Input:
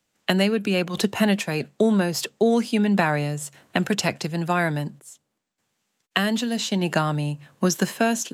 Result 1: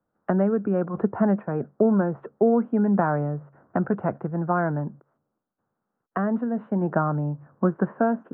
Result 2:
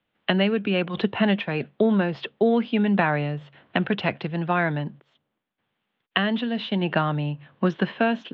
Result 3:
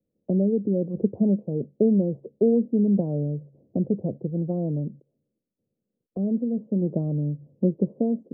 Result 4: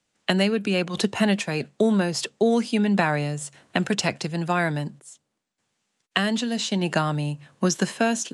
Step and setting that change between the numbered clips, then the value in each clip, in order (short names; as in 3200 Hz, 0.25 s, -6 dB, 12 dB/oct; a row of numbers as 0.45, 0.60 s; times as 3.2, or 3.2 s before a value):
elliptic low-pass, frequency: 1400, 3400, 530, 10000 Hz